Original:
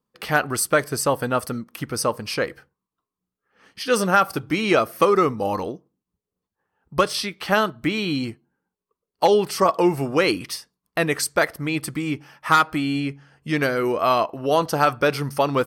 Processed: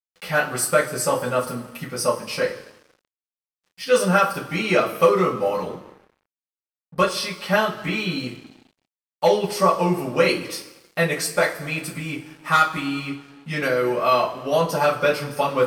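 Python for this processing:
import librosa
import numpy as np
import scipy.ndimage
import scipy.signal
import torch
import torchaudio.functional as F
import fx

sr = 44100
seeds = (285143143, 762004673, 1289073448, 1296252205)

y = fx.rev_double_slope(x, sr, seeds[0], early_s=0.23, late_s=1.6, knee_db=-18, drr_db=-8.5)
y = np.sign(y) * np.maximum(np.abs(y) - 10.0 ** (-39.5 / 20.0), 0.0)
y = y * librosa.db_to_amplitude(-8.5)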